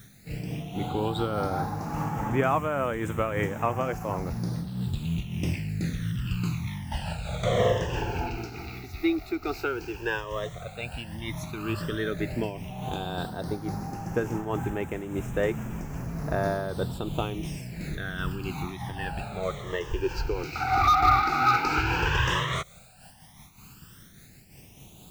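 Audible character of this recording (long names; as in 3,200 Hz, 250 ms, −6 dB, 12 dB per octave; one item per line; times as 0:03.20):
a quantiser's noise floor 10 bits, dither triangular
phaser sweep stages 12, 0.083 Hz, lowest notch 170–4,300 Hz
amplitude modulation by smooth noise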